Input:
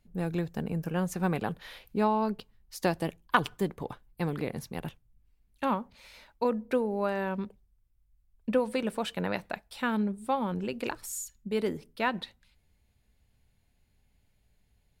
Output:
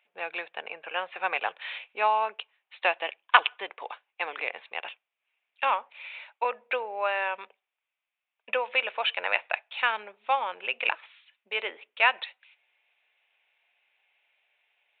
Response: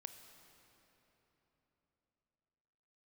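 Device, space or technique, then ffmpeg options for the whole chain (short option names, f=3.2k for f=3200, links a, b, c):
musical greeting card: -af "aresample=8000,aresample=44100,highpass=f=630:w=0.5412,highpass=f=630:w=1.3066,equalizer=f=2.5k:t=o:w=0.59:g=11.5,volume=5dB"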